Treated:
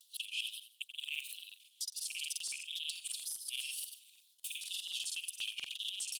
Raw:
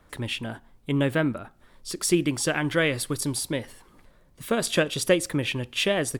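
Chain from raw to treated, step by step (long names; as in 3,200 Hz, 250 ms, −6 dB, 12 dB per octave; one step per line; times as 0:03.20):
reversed piece by piece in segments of 100 ms
Butterworth high-pass 2,700 Hz 96 dB per octave
brickwall limiter −24 dBFS, peak gain reduction 10.5 dB
reversed playback
downward compressor 16 to 1, threshold −47 dBFS, peak gain reduction 17 dB
reversed playback
tape wow and flutter 140 cents
repeating echo 84 ms, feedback 31%, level −10 dB
regular buffer underruns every 0.12 s, samples 2,048, repeat, from 0:00.87
level +12 dB
Opus 24 kbit/s 48,000 Hz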